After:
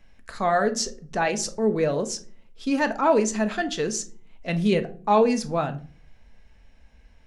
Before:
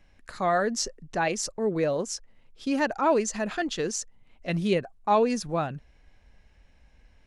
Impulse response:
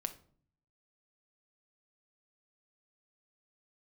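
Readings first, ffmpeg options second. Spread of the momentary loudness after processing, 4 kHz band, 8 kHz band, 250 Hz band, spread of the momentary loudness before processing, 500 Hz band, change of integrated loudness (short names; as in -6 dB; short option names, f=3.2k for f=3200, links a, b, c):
11 LU, +2.5 dB, +2.5 dB, +4.0 dB, 12 LU, +3.0 dB, +3.0 dB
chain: -filter_complex "[1:a]atrim=start_sample=2205,asetrate=57330,aresample=44100[a];[0:a][a]afir=irnorm=-1:irlink=0,volume=5.5dB"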